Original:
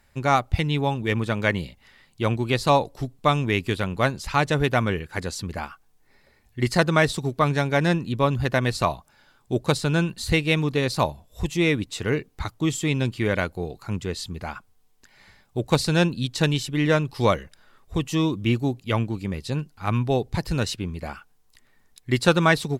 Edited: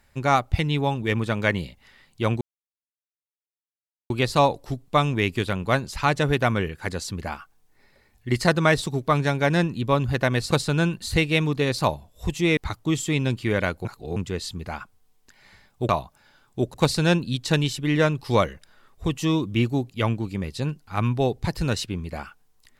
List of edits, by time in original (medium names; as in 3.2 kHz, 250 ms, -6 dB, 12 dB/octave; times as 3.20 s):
2.41 s: insert silence 1.69 s
8.82–9.67 s: move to 15.64 s
11.73–12.32 s: delete
13.60–13.91 s: reverse